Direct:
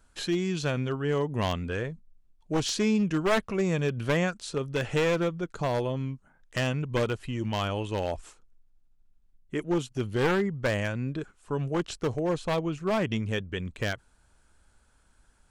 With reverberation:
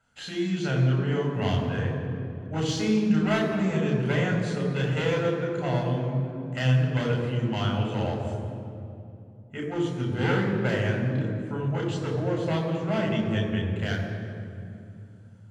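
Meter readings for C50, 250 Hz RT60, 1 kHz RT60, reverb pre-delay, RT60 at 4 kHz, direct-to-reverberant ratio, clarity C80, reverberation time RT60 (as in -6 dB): 3.0 dB, 3.9 s, 2.4 s, 3 ms, 1.6 s, -1.0 dB, 4.5 dB, 2.6 s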